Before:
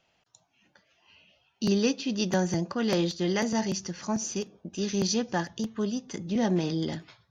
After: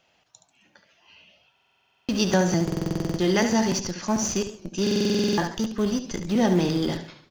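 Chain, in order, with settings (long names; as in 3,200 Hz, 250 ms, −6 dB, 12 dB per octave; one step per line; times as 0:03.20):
low-shelf EQ 160 Hz −5 dB
repeating echo 72 ms, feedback 24%, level −9 dB
in parallel at −11.5 dB: comparator with hysteresis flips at −30.5 dBFS
on the sum: buffer that repeats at 0:01.53/0:02.63/0:04.82, samples 2,048, times 11
feedback echo with a swinging delay time 133 ms, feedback 32%, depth 218 cents, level −19 dB
level +5 dB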